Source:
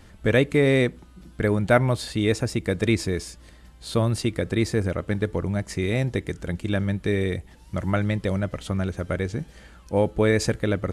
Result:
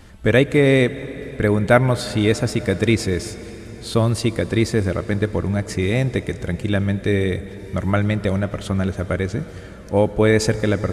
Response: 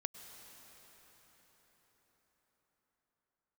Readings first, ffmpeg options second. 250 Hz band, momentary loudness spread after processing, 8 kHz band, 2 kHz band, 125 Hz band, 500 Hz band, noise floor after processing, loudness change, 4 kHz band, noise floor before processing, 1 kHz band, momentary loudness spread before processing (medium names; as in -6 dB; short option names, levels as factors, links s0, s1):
+4.5 dB, 12 LU, +4.5 dB, +4.5 dB, +4.5 dB, +4.5 dB, -37 dBFS, +4.5 dB, +4.5 dB, -49 dBFS, +4.5 dB, 10 LU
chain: -filter_complex "[0:a]asplit=2[s0][s1];[1:a]atrim=start_sample=2205[s2];[s1][s2]afir=irnorm=-1:irlink=0,volume=0.891[s3];[s0][s3]amix=inputs=2:normalize=0"